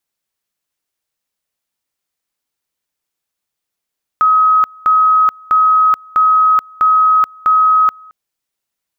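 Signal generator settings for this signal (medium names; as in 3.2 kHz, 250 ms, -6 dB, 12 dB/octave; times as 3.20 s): two-level tone 1.27 kHz -7 dBFS, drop 28 dB, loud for 0.43 s, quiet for 0.22 s, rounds 6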